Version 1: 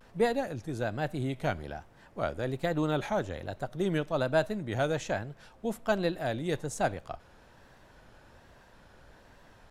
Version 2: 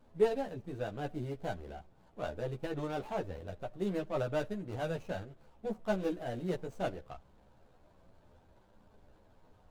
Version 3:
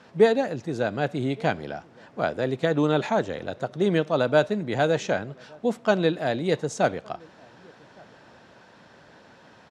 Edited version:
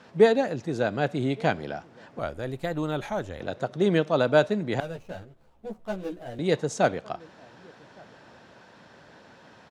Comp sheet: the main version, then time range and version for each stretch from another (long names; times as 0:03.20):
3
0:02.19–0:03.40: punch in from 1
0:04.80–0:06.39: punch in from 2